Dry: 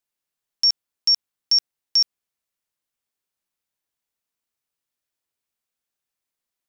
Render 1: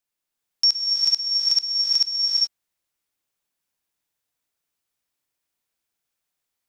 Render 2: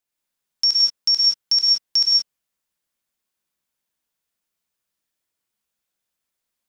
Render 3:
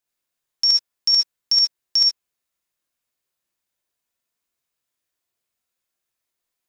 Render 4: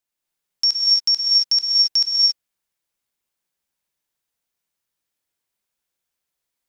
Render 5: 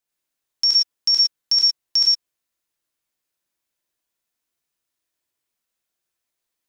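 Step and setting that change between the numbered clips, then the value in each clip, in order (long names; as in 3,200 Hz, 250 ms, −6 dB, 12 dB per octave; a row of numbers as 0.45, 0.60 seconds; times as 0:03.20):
reverb whose tail is shaped and stops, gate: 450, 200, 90, 300, 130 milliseconds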